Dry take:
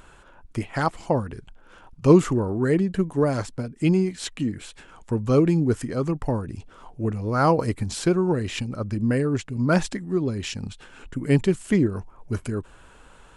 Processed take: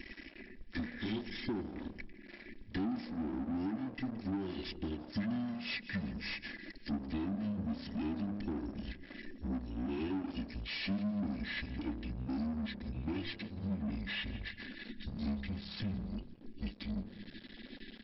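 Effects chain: pitch bend over the whole clip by -8 st starting unshifted; Chebyshev band-stop 520–2400 Hz, order 5; peaking EQ 1.7 kHz +4 dB 1.2 oct; comb 2.6 ms, depth 81%; de-hum 46.01 Hz, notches 34; compression 16:1, threshold -35 dBFS, peak gain reduction 27 dB; crossover distortion -52.5 dBFS; small resonant body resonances 280/2200 Hz, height 7 dB; frequency-shifting echo 126 ms, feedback 47%, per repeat -35 Hz, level -23 dB; overdrive pedal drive 17 dB, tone 4.1 kHz, clips at -31.5 dBFS; speed mistake 45 rpm record played at 33 rpm; brick-wall FIR low-pass 5.6 kHz; trim +1 dB

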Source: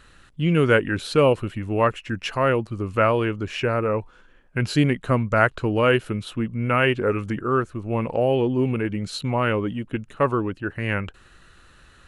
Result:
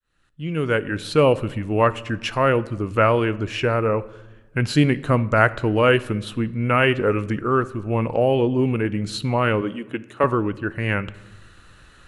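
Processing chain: fade-in on the opening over 1.39 s; 9.61–10.24 s: high-pass 260 Hz 12 dB/octave; on a send: reverberation RT60 1.1 s, pre-delay 6 ms, DRR 16 dB; on the sum: trim +2 dB

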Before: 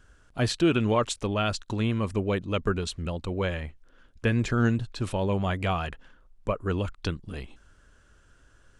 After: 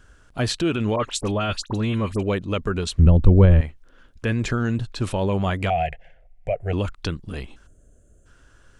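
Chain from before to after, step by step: 5.70–6.73 s: FFT filter 160 Hz 0 dB, 240 Hz -23 dB, 720 Hz +12 dB, 1.1 kHz -28 dB, 2.1 kHz +8 dB, 3.7 kHz -11 dB; peak limiter -19 dBFS, peak gain reduction 8 dB; 0.96–2.23 s: phase dispersion highs, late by 52 ms, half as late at 2 kHz; 2.99–3.61 s: tilt EQ -4.5 dB/octave; 7.67–8.26 s: time-frequency box 750–6200 Hz -20 dB; trim +5 dB

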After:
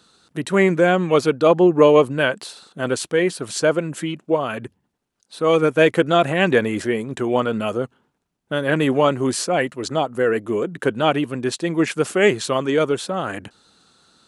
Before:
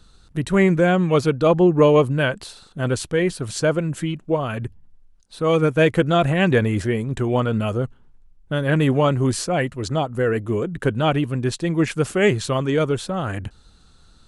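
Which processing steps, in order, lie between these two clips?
high-pass 240 Hz 12 dB/octave; trim +2.5 dB

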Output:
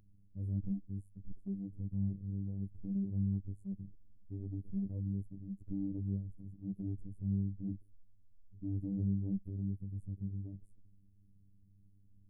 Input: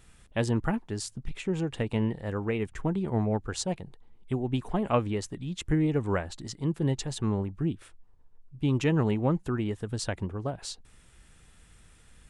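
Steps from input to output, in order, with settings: inverse Chebyshev band-stop 1.2–5.2 kHz, stop band 80 dB; transient shaper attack -5 dB, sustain +3 dB; robot voice 98.3 Hz; trim -3 dB

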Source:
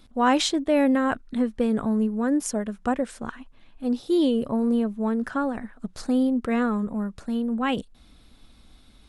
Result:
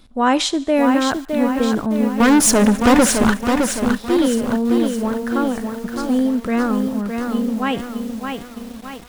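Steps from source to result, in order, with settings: thinning echo 73 ms, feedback 65%, high-pass 840 Hz, level -20.5 dB; 2.20–3.34 s: waveshaping leveller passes 5; bit-crushed delay 613 ms, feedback 55%, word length 7-bit, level -5 dB; trim +4 dB

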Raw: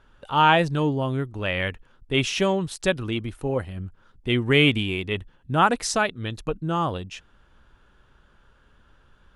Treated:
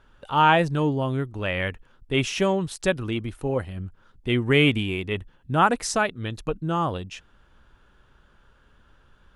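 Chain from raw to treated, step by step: dynamic bell 3.8 kHz, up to -4 dB, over -39 dBFS, Q 1.3

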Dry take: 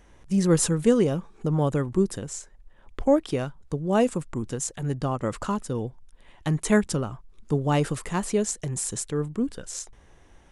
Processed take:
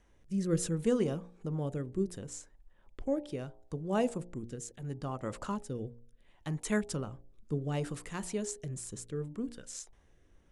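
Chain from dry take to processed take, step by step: de-hum 58.98 Hz, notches 16; rotary cabinet horn 0.7 Hz; trim -8 dB

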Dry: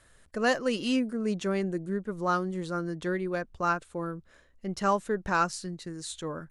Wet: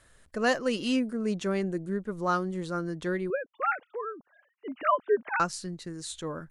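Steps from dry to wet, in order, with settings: 3.30–5.40 s: formants replaced by sine waves

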